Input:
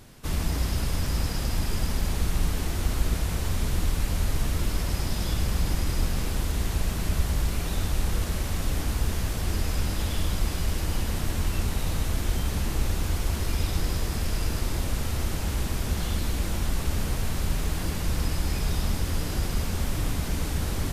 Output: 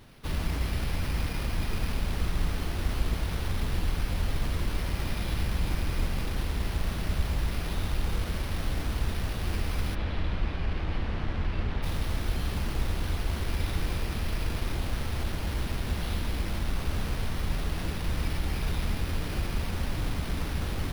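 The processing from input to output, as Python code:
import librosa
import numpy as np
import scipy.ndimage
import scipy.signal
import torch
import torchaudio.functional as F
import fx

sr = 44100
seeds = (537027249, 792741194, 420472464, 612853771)

y = np.repeat(x[::6], 6)[:len(x)]
y = fx.lowpass(y, sr, hz=3000.0, slope=12, at=(9.94, 11.82), fade=0.02)
y = y * librosa.db_to_amplitude(-3.0)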